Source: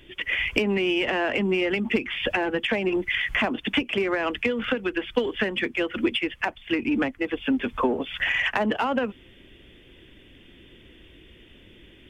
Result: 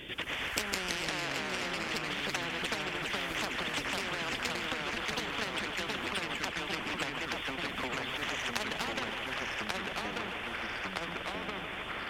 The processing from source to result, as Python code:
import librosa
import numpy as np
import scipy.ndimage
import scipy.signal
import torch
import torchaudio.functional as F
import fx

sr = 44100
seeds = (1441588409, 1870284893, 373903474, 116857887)

p1 = fx.highpass(x, sr, hz=140.0, slope=6)
p2 = fx.level_steps(p1, sr, step_db=23)
p3 = p1 + (p2 * librosa.db_to_amplitude(-1.0))
p4 = fx.echo_pitch(p3, sr, ms=89, semitones=-2, count=3, db_per_echo=-3.0)
p5 = fx.echo_thinned(p4, sr, ms=153, feedback_pct=81, hz=420.0, wet_db=-15.5)
p6 = fx.spectral_comp(p5, sr, ratio=4.0)
y = p6 * librosa.db_to_amplitude(-6.0)